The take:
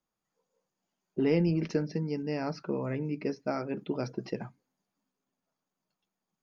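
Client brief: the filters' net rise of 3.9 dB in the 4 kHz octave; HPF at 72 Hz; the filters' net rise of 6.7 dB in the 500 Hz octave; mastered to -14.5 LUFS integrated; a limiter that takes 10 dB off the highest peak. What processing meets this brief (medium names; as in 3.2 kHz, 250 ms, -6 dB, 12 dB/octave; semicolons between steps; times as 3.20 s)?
high-pass 72 Hz; peaking EQ 500 Hz +8 dB; peaking EQ 4 kHz +5.5 dB; trim +17 dB; peak limiter -3.5 dBFS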